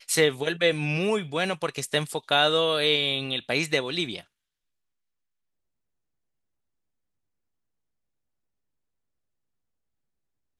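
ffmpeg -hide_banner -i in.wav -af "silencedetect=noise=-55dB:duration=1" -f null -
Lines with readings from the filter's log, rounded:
silence_start: 4.27
silence_end: 10.59 | silence_duration: 6.33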